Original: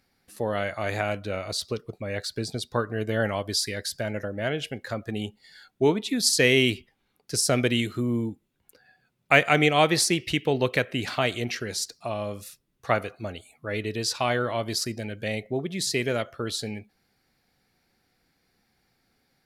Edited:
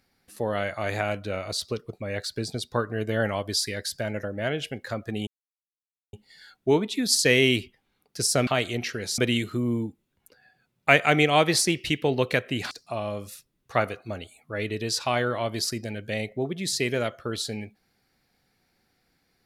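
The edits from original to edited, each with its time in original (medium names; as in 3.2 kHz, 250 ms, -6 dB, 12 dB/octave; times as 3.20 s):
5.27 s: insert silence 0.86 s
11.14–11.85 s: move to 7.61 s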